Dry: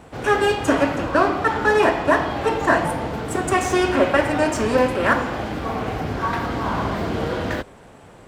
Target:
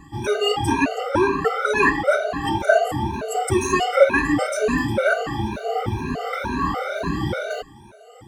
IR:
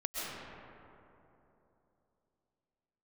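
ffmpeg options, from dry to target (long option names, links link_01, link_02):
-af "afftfilt=real='re*pow(10,21/40*sin(2*PI*(1.5*log(max(b,1)*sr/1024/100)/log(2)-(2.1)*(pts-256)/sr)))':imag='im*pow(10,21/40*sin(2*PI*(1.5*log(max(b,1)*sr/1024/100)/log(2)-(2.1)*(pts-256)/sr)))':win_size=1024:overlap=0.75,afftfilt=real='re*gt(sin(2*PI*1.7*pts/sr)*(1-2*mod(floor(b*sr/1024/390),2)),0)':imag='im*gt(sin(2*PI*1.7*pts/sr)*(1-2*mod(floor(b*sr/1024/390),2)),0)':win_size=1024:overlap=0.75,volume=-1.5dB"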